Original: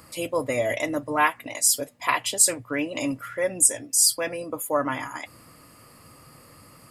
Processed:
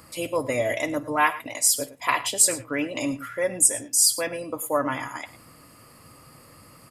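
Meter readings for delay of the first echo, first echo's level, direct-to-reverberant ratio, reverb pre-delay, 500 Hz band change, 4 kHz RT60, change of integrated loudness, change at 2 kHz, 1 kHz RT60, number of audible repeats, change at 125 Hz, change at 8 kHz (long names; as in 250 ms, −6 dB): 52 ms, −19.5 dB, no reverb audible, no reverb audible, 0.0 dB, no reverb audible, 0.0 dB, 0.0 dB, no reverb audible, 2, +0.5 dB, 0.0 dB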